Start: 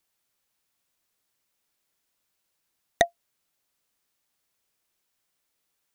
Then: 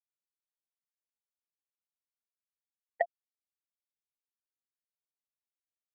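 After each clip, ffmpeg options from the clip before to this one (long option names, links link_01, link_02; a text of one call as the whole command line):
ffmpeg -i in.wav -af "lowpass=2400,afftfilt=real='re*gte(hypot(re,im),0.282)':imag='im*gte(hypot(re,im),0.282)':win_size=1024:overlap=0.75,acompressor=threshold=-28dB:ratio=3" out.wav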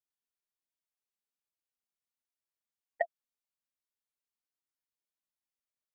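ffmpeg -i in.wav -af "flanger=delay=3.1:depth=1.9:regen=47:speed=1.3:shape=sinusoidal,volume=2dB" out.wav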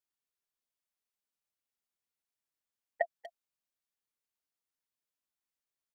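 ffmpeg -i in.wav -filter_complex "[0:a]asplit=2[link_01][link_02];[link_02]adelay=240,highpass=300,lowpass=3400,asoftclip=type=hard:threshold=-25dB,volume=-14dB[link_03];[link_01][link_03]amix=inputs=2:normalize=0" out.wav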